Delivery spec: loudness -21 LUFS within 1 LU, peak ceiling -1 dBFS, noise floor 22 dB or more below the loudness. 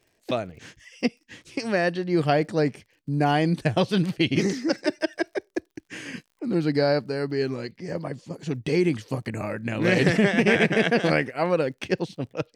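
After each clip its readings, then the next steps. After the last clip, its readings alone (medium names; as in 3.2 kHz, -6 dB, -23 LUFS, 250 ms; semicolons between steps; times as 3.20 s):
tick rate 45 per s; loudness -25.0 LUFS; peak level -6.0 dBFS; loudness target -21.0 LUFS
-> de-click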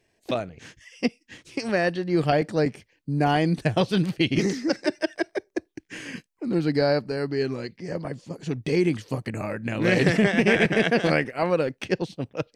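tick rate 0 per s; loudness -25.0 LUFS; peak level -6.0 dBFS; loudness target -21.0 LUFS
-> trim +4 dB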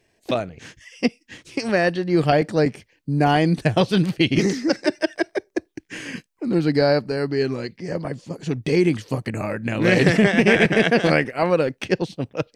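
loudness -21.0 LUFS; peak level -2.0 dBFS; noise floor -66 dBFS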